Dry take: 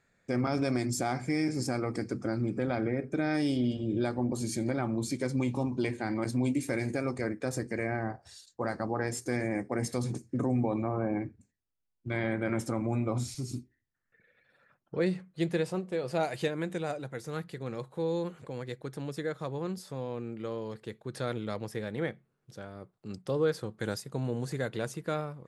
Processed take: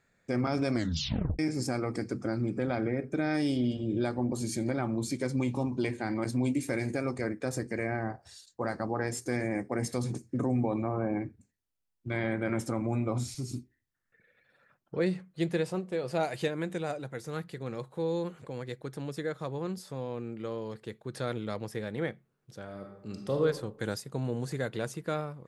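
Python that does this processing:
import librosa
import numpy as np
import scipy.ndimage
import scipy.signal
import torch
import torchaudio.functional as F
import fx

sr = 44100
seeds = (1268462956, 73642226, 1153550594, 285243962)

y = fx.reverb_throw(x, sr, start_s=22.63, length_s=0.78, rt60_s=0.92, drr_db=3.0)
y = fx.edit(y, sr, fx.tape_stop(start_s=0.74, length_s=0.65), tone=tone)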